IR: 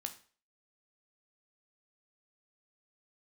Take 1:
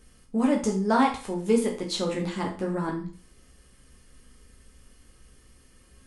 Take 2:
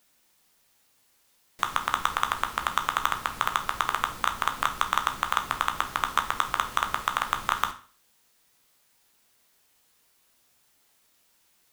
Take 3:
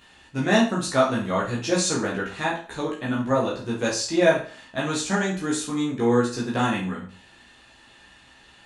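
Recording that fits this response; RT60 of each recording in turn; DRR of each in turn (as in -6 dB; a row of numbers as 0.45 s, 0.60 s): 2; 0.40 s, 0.40 s, 0.40 s; -0.5 dB, 6.0 dB, -5.5 dB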